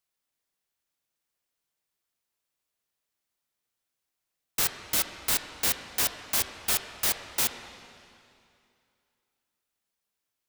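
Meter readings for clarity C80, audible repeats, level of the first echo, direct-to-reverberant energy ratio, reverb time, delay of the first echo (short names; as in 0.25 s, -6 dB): 8.5 dB, none, none, 7.0 dB, 2.5 s, none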